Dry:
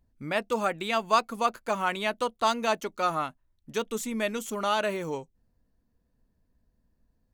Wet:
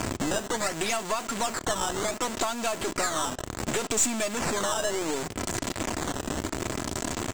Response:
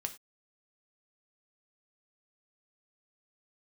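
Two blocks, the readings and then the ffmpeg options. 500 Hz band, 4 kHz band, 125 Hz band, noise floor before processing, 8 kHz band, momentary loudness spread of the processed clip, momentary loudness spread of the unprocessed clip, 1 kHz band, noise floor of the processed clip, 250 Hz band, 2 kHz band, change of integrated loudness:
0.0 dB, +3.5 dB, +7.5 dB, -73 dBFS, +14.0 dB, 6 LU, 9 LU, -2.5 dB, -40 dBFS, +3.5 dB, +1.0 dB, 0.0 dB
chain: -filter_complex "[0:a]aeval=exprs='val(0)+0.5*0.0631*sgn(val(0))':c=same,highpass=f=83:w=0.5412,highpass=f=83:w=1.3066,lowshelf=f=150:g=-5,aecho=1:1:3:0.43,acompressor=threshold=-32dB:ratio=10,acrusher=samples=11:mix=1:aa=0.000001:lfo=1:lforange=17.6:lforate=0.68,lowpass=f=7.6k:t=q:w=5.1,aeval=exprs='0.15*(cos(1*acos(clip(val(0)/0.15,-1,1)))-cos(1*PI/2))+0.0106*(cos(8*acos(clip(val(0)/0.15,-1,1)))-cos(8*PI/2))':c=same,acrusher=bits=7:mix=0:aa=0.000001,asplit=2[a][b];[1:a]atrim=start_sample=2205,lowpass=5.2k[c];[b][c]afir=irnorm=-1:irlink=0,volume=-11.5dB[d];[a][d]amix=inputs=2:normalize=0,volume=4dB"

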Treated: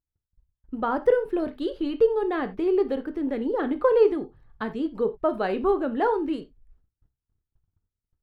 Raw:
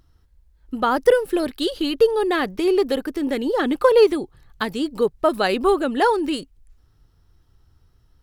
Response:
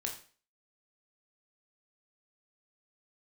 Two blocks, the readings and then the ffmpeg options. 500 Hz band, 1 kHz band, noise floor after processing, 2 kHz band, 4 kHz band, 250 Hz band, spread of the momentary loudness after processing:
-4.5 dB, -6.0 dB, under -85 dBFS, -9.0 dB, under -15 dB, -4.0 dB, 9 LU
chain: -filter_complex "[0:a]agate=range=-29dB:threshold=-51dB:ratio=16:detection=peak,lowpass=f=1.2k:p=1,asplit=2[a][b];[1:a]atrim=start_sample=2205,atrim=end_sample=4410,lowpass=3.5k[c];[b][c]afir=irnorm=-1:irlink=0,volume=-3.5dB[d];[a][d]amix=inputs=2:normalize=0,volume=-8dB"

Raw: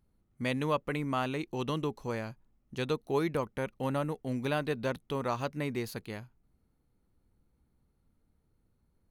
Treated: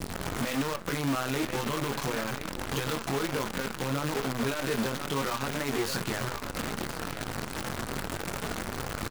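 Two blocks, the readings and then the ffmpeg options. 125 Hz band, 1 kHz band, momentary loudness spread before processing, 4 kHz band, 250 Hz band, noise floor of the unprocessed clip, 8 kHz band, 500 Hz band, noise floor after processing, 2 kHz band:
+3.0 dB, +4.0 dB, 8 LU, +9.5 dB, +3.5 dB, -74 dBFS, +16.5 dB, +1.0 dB, -39 dBFS, +7.0 dB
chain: -filter_complex "[0:a]aeval=exprs='val(0)+0.5*0.0188*sgn(val(0))':c=same,acompressor=threshold=-33dB:ratio=4,asplit=2[a][b];[b]aecho=0:1:1033:0.237[c];[a][c]amix=inputs=2:normalize=0,adynamicequalizer=threshold=0.00141:dfrequency=1400:dqfactor=2.2:tfrequency=1400:tqfactor=2.2:attack=5:release=100:ratio=0.375:range=3:mode=boostabove:tftype=bell,flanger=delay=0.6:depth=9.6:regen=-50:speed=0.33:shape=triangular,lowpass=f=9.2k:w=0.5412,lowpass=f=9.2k:w=1.3066,acontrast=52,highpass=f=130:p=1,highshelf=f=4.7k:g=-2.5,alimiter=level_in=8dB:limit=-24dB:level=0:latency=1:release=55,volume=-8dB,asplit=2[d][e];[e]adelay=22,volume=-4.5dB[f];[d][f]amix=inputs=2:normalize=0,acrusher=bits=7:dc=4:mix=0:aa=0.000001,volume=7dB"

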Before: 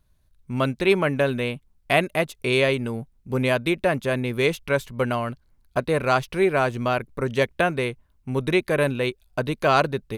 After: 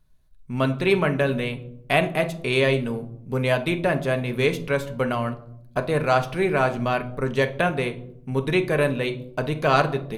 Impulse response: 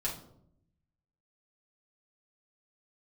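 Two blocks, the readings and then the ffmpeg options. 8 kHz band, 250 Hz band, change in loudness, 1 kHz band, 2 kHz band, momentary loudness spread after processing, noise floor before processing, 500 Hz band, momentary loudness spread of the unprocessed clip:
-2.0 dB, 0.0 dB, 0.0 dB, 0.0 dB, -0.5 dB, 9 LU, -63 dBFS, 0.0 dB, 9 LU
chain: -filter_complex "[0:a]asplit=2[a][b];[1:a]atrim=start_sample=2205,highshelf=f=9.6k:g=-9.5[c];[b][c]afir=irnorm=-1:irlink=0,volume=-5.5dB[d];[a][d]amix=inputs=2:normalize=0,volume=-4dB"

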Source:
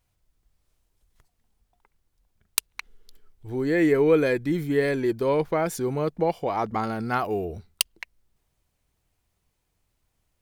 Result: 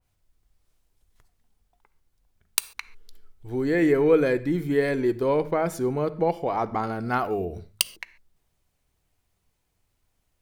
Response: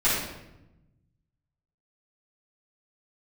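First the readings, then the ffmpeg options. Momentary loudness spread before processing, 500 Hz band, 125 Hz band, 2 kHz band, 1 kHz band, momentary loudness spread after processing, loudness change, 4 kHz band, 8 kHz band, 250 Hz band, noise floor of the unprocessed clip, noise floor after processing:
13 LU, +0.5 dB, -0.5 dB, -0.5 dB, +0.5 dB, 12 LU, 0.0 dB, 0.0 dB, 0.0 dB, 0.0 dB, -75 dBFS, -74 dBFS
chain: -filter_complex "[0:a]bandreject=f=52.33:t=h:w=4,bandreject=f=104.66:t=h:w=4,bandreject=f=156.99:t=h:w=4,bandreject=f=209.32:t=h:w=4,asplit=2[a][b];[1:a]atrim=start_sample=2205,atrim=end_sample=6615[c];[b][c]afir=irnorm=-1:irlink=0,volume=-27.5dB[d];[a][d]amix=inputs=2:normalize=0,adynamicequalizer=threshold=0.01:dfrequency=1900:dqfactor=0.7:tfrequency=1900:tqfactor=0.7:attack=5:release=100:ratio=0.375:range=2.5:mode=cutabove:tftype=highshelf"

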